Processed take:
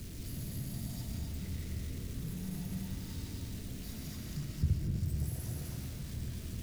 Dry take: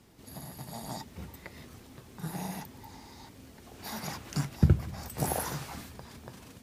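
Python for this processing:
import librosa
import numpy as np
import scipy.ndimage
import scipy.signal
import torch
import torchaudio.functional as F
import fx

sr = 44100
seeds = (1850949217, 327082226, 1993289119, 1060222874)

p1 = x + 0.5 * 10.0 ** (-28.0 / 20.0) * np.sign(x)
p2 = fx.tone_stack(p1, sr, knobs='10-0-1')
p3 = fx.notch(p2, sr, hz=810.0, q=12.0)
p4 = p3 + fx.echo_single(p3, sr, ms=256, db=-4.0, dry=0)
p5 = fx.rev_freeverb(p4, sr, rt60_s=1.7, hf_ratio=0.45, predelay_ms=95, drr_db=0.0)
p6 = fx.rider(p5, sr, range_db=10, speed_s=2.0)
p7 = p5 + F.gain(torch.from_numpy(p6), 1.5).numpy()
y = F.gain(torch.from_numpy(p7), -5.0).numpy()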